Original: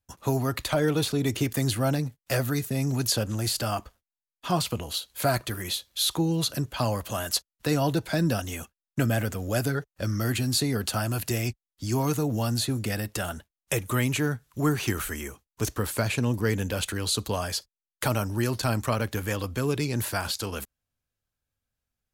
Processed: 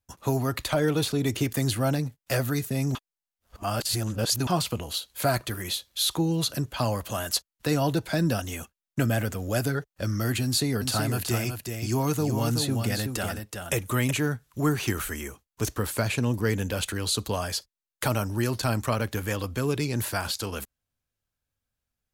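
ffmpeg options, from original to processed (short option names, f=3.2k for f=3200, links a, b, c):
-filter_complex "[0:a]asettb=1/sr,asplit=3[a][b][c];[a]atrim=end=10.444[d];[b]atrim=start=10.44:end=14.11,asetpts=PTS-STARTPTS,afade=t=in:d=0.004:c=qsin,afade=t=out:st=3.666:d=0.004:c=qsin,aecho=1:1:374:0.501,atrim=end_sample=161847[e];[c]atrim=start=14.106[f];[d][e]acrossfade=d=0.004:c1=hsin:c2=qsin[g];[g][f]acrossfade=d=0.004:c1=qsin:c2=hsin,asplit=3[h][i][j];[h]atrim=end=2.952[k];[i]atrim=start=2.948:end=4.472,asetpts=PTS-STARTPTS,areverse[l];[j]atrim=start=4.468[m];[k][l]acrossfade=d=0.004:c1=hsin:c2=hsin[n];[n][m]acrossfade=d=0.004:c1=hsin:c2=hsin"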